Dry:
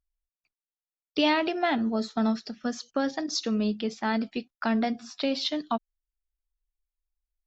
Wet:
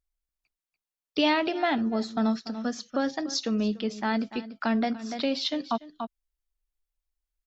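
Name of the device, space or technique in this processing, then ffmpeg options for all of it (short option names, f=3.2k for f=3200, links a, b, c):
ducked delay: -filter_complex "[0:a]asplit=3[a][b][c];[b]adelay=290,volume=-6dB[d];[c]apad=whole_len=342012[e];[d][e]sidechaincompress=threshold=-39dB:ratio=16:attack=16:release=224[f];[a][f]amix=inputs=2:normalize=0"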